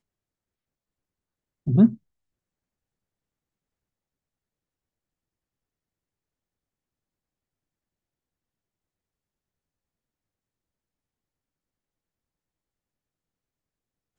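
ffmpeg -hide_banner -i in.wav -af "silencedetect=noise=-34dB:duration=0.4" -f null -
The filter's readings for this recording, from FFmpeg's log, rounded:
silence_start: 0.00
silence_end: 1.67 | silence_duration: 1.67
silence_start: 1.94
silence_end: 14.18 | silence_duration: 12.24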